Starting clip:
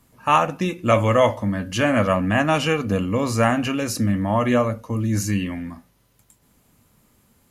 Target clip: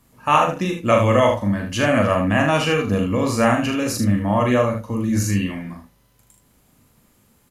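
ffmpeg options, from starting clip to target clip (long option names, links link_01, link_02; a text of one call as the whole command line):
ffmpeg -i in.wav -af "aecho=1:1:40|76:0.531|0.447" out.wav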